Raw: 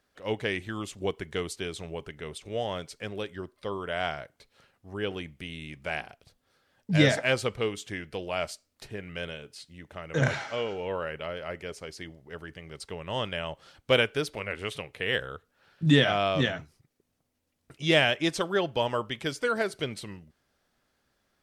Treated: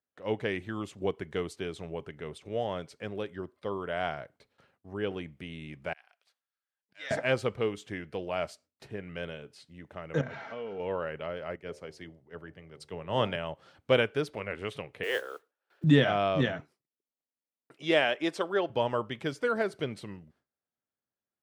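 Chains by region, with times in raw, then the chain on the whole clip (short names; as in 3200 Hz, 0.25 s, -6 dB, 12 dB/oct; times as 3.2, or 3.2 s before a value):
5.93–7.11 HPF 1400 Hz + auto swell 0.367 s
10.21–10.8 compressor 4:1, threshold -35 dBFS + air absorption 120 m + comb 4.4 ms, depth 39%
11.56–13.36 de-hum 75.07 Hz, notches 12 + three-band expander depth 70%
15.03–15.84 steep high-pass 310 Hz 48 dB/oct + modulation noise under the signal 14 dB
16.6–18.7 HPF 300 Hz + notch 6300 Hz, Q 17
whole clip: gate with hold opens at -52 dBFS; HPF 91 Hz; high shelf 2600 Hz -11 dB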